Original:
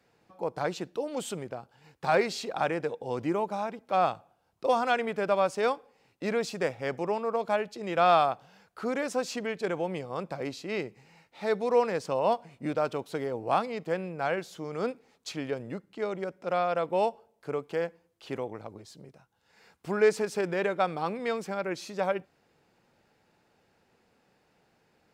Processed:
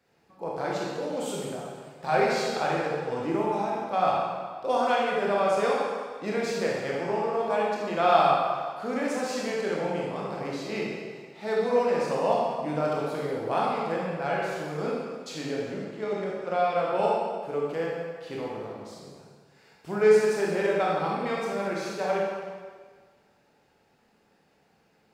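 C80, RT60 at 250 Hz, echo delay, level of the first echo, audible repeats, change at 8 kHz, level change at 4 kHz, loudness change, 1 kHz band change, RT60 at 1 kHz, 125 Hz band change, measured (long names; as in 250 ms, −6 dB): 0.5 dB, 1.6 s, no echo audible, no echo audible, no echo audible, +2.0 dB, +2.5 dB, +2.5 dB, +3.0 dB, 1.6 s, +3.0 dB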